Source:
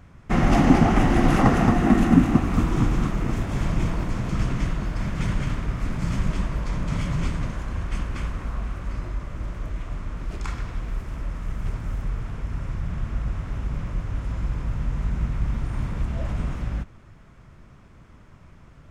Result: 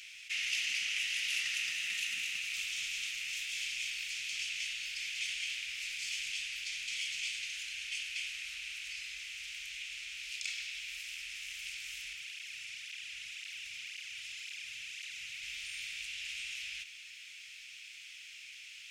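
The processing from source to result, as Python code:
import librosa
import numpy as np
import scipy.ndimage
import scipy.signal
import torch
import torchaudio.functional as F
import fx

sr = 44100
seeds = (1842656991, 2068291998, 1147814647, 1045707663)

y = fx.flanger_cancel(x, sr, hz=1.9, depth_ms=3.3, at=(12.13, 15.43))
y = scipy.signal.sosfilt(scipy.signal.ellip(4, 1.0, 60, 2500.0, 'highpass', fs=sr, output='sos'), y)
y = fx.high_shelf(y, sr, hz=5400.0, db=-9.5)
y = fx.env_flatten(y, sr, amount_pct=50)
y = y * librosa.db_to_amplitude(4.5)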